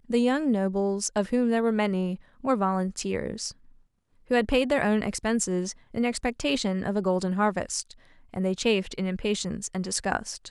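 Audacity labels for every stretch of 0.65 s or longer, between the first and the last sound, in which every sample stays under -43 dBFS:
3.520000	4.300000	silence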